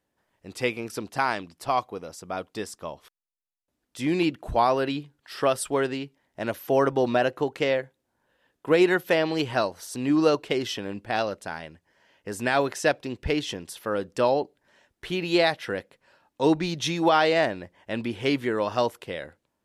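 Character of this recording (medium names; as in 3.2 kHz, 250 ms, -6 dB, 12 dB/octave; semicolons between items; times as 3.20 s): noise floor -80 dBFS; spectral tilt -3.5 dB/octave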